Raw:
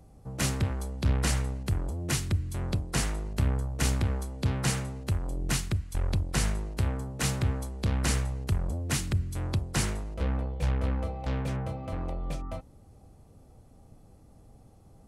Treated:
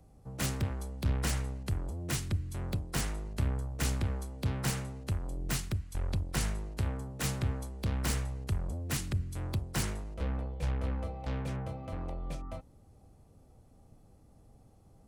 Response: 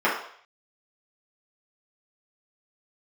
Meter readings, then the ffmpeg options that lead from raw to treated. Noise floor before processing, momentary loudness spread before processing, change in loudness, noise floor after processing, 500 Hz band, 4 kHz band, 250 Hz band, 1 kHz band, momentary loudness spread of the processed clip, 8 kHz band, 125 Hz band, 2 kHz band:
-55 dBFS, 5 LU, -4.5 dB, -60 dBFS, -4.5 dB, -5.0 dB, -4.5 dB, -4.5 dB, 5 LU, -5.0 dB, -4.5 dB, -5.0 dB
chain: -filter_complex "[0:a]aeval=exprs='0.2*(cos(1*acos(clip(val(0)/0.2,-1,1)))-cos(1*PI/2))+0.0141*(cos(2*acos(clip(val(0)/0.2,-1,1)))-cos(2*PI/2))+0.00501*(cos(3*acos(clip(val(0)/0.2,-1,1)))-cos(3*PI/2))+0.002*(cos(6*acos(clip(val(0)/0.2,-1,1)))-cos(6*PI/2))':c=same,acrossover=split=410|1400[s0][s1][s2];[s2]aeval=exprs='(mod(15*val(0)+1,2)-1)/15':c=same[s3];[s0][s1][s3]amix=inputs=3:normalize=0,volume=0.631"

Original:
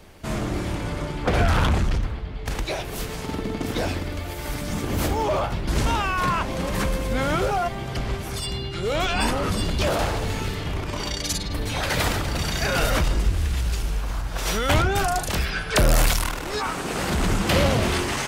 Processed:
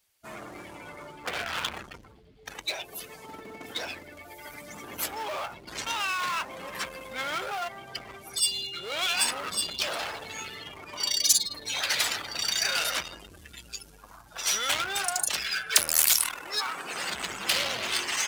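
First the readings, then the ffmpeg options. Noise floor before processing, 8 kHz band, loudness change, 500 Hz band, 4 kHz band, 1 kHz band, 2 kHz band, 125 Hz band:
-32 dBFS, +4.0 dB, -3.0 dB, -13.5 dB, +1.0 dB, -8.5 dB, -3.5 dB, -27.0 dB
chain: -filter_complex "[0:a]afftdn=nr=25:nf=-32,aeval=exprs='0.335*(cos(1*acos(clip(val(0)/0.335,-1,1)))-cos(1*PI/2))+0.0266*(cos(5*acos(clip(val(0)/0.335,-1,1)))-cos(5*PI/2))':c=same,asplit=2[s0][s1];[s1]asoftclip=type=hard:threshold=0.0501,volume=0.668[s2];[s0][s2]amix=inputs=2:normalize=0,aderivative,volume=1.78"

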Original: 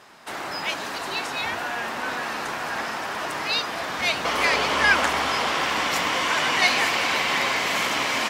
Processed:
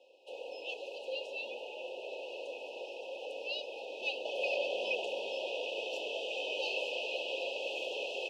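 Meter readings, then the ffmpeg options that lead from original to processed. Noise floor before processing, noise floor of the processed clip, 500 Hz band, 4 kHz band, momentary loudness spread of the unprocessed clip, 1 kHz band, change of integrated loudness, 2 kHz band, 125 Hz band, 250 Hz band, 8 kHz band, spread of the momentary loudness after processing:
-32 dBFS, -47 dBFS, -5.5 dB, -14.0 dB, 10 LU, -23.0 dB, -14.5 dB, -17.5 dB, under -40 dB, -20.5 dB, -24.5 dB, 9 LU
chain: -filter_complex "[0:a]highpass=74,afreqshift=140,afftfilt=real='re*(1-between(b*sr/4096,1000,2500))':imag='im*(1-between(b*sr/4096,1000,2500))':win_size=4096:overlap=0.75,asplit=3[s0][s1][s2];[s0]bandpass=f=530:t=q:w=8,volume=1[s3];[s1]bandpass=f=1840:t=q:w=8,volume=0.501[s4];[s2]bandpass=f=2480:t=q:w=8,volume=0.355[s5];[s3][s4][s5]amix=inputs=3:normalize=0,volume=1.26"

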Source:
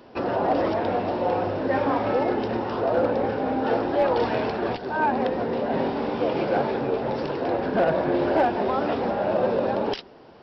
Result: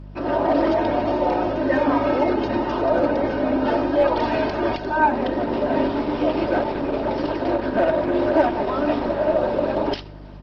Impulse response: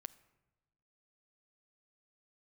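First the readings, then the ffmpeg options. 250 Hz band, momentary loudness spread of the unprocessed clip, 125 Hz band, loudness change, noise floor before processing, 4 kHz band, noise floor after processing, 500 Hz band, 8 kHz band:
+5.0 dB, 4 LU, +1.5 dB, +3.0 dB, -47 dBFS, +2.5 dB, -37 dBFS, +2.5 dB, no reading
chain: -filter_complex "[0:a]aecho=1:1:3.2:0.7,dynaudnorm=f=150:g=3:m=3.16,aeval=exprs='val(0)+0.0355*(sin(2*PI*50*n/s)+sin(2*PI*2*50*n/s)/2+sin(2*PI*3*50*n/s)/3+sin(2*PI*4*50*n/s)/4+sin(2*PI*5*50*n/s)/5)':c=same[s0];[1:a]atrim=start_sample=2205,afade=t=out:st=0.19:d=0.01,atrim=end_sample=8820,asetrate=48510,aresample=44100[s1];[s0][s1]afir=irnorm=-1:irlink=0" -ar 48000 -c:a libopus -b:a 16k

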